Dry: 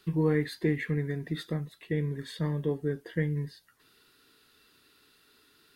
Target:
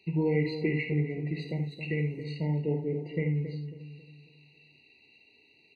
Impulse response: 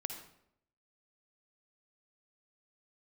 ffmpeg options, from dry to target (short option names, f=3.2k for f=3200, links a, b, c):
-filter_complex "[0:a]highpass=66,asettb=1/sr,asplit=3[a][b][c];[a]atrim=end=1.424[d];[b]atrim=start=1.42:end=2.24,asetpts=PTS-STARTPTS,afade=t=in:d=0.004:c=qsin,afade=t=out:st=0.816:d=0.004:c=qsin,aemphasis=mode=production:type=75fm[e];[c]atrim=start=2.236[f];[d][e]acrossfade=d=0.004:c1=hsin:c2=qsin[g];[g][f]acrossfade=d=0.004:c1=qsin:c2=hsin,lowpass=f=3.1k:t=q:w=14,asplit=2[h][i];[i]adelay=272,lowpass=f=890:p=1,volume=-8.5dB,asplit=2[j][k];[k]adelay=272,lowpass=f=890:p=1,volume=0.41,asplit=2[l][m];[m]adelay=272,lowpass=f=890:p=1,volume=0.41,asplit=2[n][o];[o]adelay=272,lowpass=f=890:p=1,volume=0.41,asplit=2[p][q];[q]adelay=272,lowpass=f=890:p=1,volume=0.41[r];[h][j][l][n][p][r]amix=inputs=6:normalize=0[s];[1:a]atrim=start_sample=2205,atrim=end_sample=3969[t];[s][t]afir=irnorm=-1:irlink=0,afftfilt=real='re*eq(mod(floor(b*sr/1024/950),2),0)':imag='im*eq(mod(floor(b*sr/1024/950),2),0)':win_size=1024:overlap=0.75"